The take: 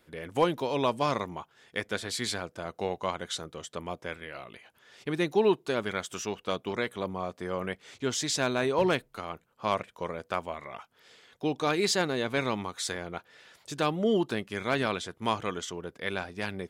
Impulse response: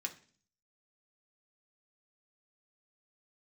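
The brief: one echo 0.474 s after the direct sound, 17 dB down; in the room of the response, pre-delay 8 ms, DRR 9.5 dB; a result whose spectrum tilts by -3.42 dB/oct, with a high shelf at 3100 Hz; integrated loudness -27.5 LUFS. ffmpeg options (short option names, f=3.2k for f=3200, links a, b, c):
-filter_complex "[0:a]highshelf=f=3.1k:g=4,aecho=1:1:474:0.141,asplit=2[a][b];[1:a]atrim=start_sample=2205,adelay=8[c];[b][c]afir=irnorm=-1:irlink=0,volume=-9dB[d];[a][d]amix=inputs=2:normalize=0,volume=2.5dB"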